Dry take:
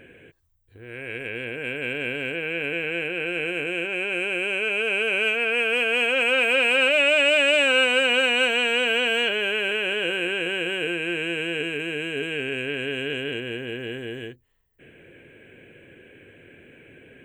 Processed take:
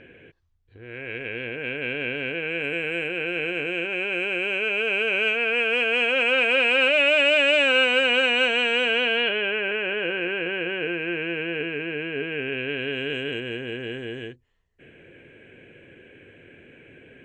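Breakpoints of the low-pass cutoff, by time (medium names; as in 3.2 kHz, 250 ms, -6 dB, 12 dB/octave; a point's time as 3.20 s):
low-pass 24 dB/octave
2.31 s 5.3 kHz
2.89 s 11 kHz
3.27 s 6.5 kHz
8.86 s 6.5 kHz
9.60 s 2.7 kHz
12.36 s 2.7 kHz
13.20 s 7 kHz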